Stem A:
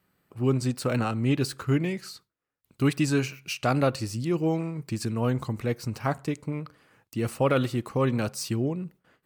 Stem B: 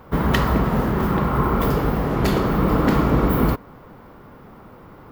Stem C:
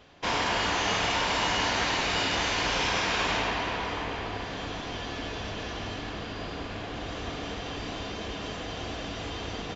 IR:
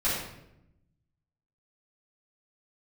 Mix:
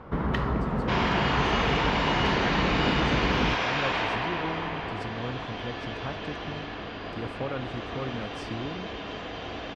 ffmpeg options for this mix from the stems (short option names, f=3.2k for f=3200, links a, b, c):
-filter_complex "[0:a]volume=-5dB[a];[1:a]volume=0dB[b];[2:a]lowshelf=f=170:g=-6,adelay=650,volume=1dB[c];[a][b]amix=inputs=2:normalize=0,crystalizer=i=0.5:c=0,acompressor=threshold=-39dB:ratio=1.5,volume=0dB[d];[c][d]amix=inputs=2:normalize=0,lowpass=3.3k"